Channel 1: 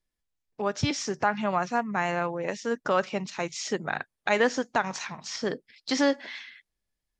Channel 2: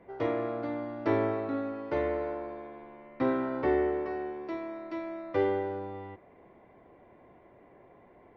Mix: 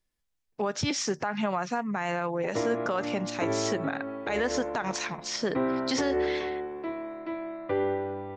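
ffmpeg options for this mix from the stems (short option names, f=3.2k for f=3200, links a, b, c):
-filter_complex "[0:a]volume=2.5dB[a];[1:a]lowpass=f=3.9k:w=0.5412,lowpass=f=3.9k:w=1.3066,adelay=2350,volume=2dB[b];[a][b]amix=inputs=2:normalize=0,alimiter=limit=-18.5dB:level=0:latency=1:release=81"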